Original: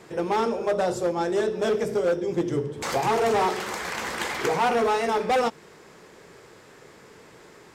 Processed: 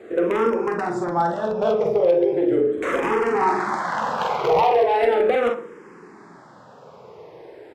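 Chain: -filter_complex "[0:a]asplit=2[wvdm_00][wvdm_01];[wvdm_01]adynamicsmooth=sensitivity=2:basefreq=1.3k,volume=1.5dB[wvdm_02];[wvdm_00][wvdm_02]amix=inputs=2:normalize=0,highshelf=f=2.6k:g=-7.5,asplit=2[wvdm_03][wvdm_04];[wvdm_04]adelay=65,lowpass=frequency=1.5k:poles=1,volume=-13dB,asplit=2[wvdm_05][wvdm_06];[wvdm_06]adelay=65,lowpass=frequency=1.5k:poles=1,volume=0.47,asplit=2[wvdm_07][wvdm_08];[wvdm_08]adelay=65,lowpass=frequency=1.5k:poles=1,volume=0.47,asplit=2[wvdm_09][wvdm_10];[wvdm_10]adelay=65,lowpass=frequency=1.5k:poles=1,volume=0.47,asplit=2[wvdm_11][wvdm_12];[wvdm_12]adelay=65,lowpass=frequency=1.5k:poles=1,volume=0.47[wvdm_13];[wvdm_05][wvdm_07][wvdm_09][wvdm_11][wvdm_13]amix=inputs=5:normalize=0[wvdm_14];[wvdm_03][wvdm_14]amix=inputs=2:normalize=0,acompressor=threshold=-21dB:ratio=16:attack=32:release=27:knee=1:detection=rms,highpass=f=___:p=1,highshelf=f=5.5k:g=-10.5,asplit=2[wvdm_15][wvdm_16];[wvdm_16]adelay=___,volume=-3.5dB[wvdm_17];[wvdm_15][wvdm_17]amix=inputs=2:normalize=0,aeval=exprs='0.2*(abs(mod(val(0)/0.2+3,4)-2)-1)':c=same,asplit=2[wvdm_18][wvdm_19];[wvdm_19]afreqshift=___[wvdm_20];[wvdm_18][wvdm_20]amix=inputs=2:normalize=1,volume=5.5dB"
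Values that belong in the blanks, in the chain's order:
360, 46, -0.38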